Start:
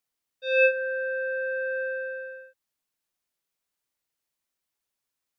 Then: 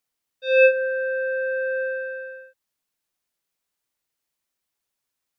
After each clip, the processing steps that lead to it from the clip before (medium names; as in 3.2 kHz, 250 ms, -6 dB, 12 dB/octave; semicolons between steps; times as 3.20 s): dynamic bell 510 Hz, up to +4 dB, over -32 dBFS; trim +2.5 dB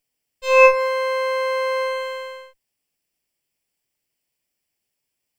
comb filter that takes the minimum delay 0.38 ms; trim +4.5 dB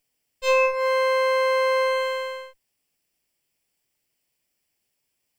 compression 16:1, threshold -19 dBFS, peak gain reduction 13.5 dB; trim +2.5 dB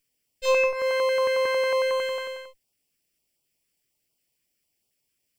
step-sequenced notch 11 Hz 750–1800 Hz